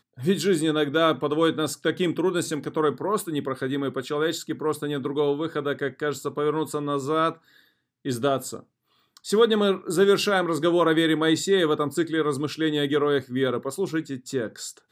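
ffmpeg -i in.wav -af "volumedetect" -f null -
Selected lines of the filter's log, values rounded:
mean_volume: -24.5 dB
max_volume: -6.0 dB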